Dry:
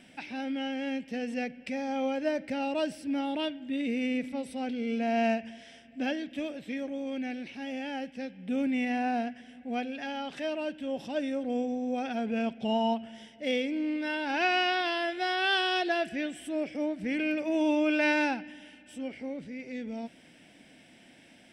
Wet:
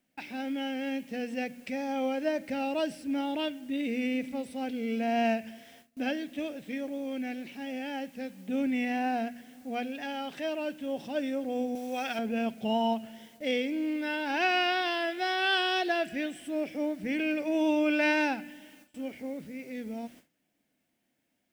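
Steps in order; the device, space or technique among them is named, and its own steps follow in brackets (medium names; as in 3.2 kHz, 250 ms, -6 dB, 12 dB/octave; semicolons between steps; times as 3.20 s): hum notches 60/120/180/240 Hz; plain cassette with noise reduction switched in (tape noise reduction on one side only decoder only; wow and flutter 25 cents; white noise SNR 31 dB); gate with hold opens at -43 dBFS; 11.75–12.19 s: tilt shelf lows -7.5 dB, about 660 Hz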